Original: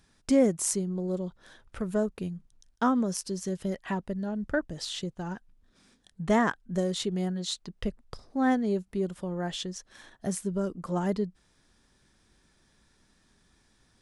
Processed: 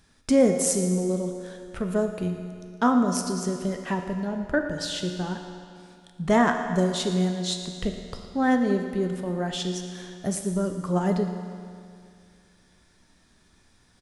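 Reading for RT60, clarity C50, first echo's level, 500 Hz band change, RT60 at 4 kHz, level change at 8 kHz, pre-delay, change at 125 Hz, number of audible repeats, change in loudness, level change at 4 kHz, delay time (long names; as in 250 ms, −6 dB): 2.3 s, 5.5 dB, −16.0 dB, +4.5 dB, 2.1 s, +4.5 dB, 11 ms, +5.5 dB, 1, +4.5 dB, +4.5 dB, 115 ms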